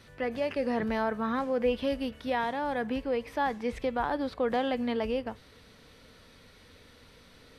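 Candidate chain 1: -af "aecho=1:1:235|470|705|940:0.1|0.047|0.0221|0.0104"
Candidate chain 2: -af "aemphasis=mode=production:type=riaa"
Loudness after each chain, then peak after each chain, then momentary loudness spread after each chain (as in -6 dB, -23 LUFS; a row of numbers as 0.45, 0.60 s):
-31.0, -32.5 LUFS; -17.5, -15.5 dBFS; 4, 19 LU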